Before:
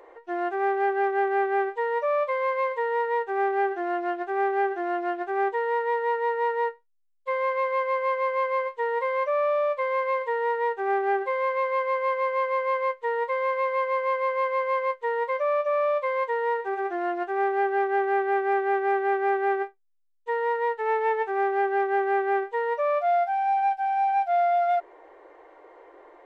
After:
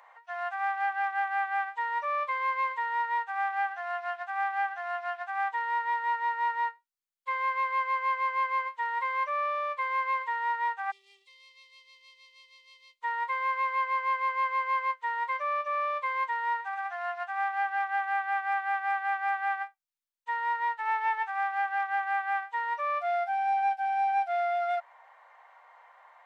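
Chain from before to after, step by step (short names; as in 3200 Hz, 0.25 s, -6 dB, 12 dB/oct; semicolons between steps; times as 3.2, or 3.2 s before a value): inverse Chebyshev high-pass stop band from 400 Hz, stop band 40 dB, from 10.9 s stop band from 1700 Hz, from 13.01 s stop band from 400 Hz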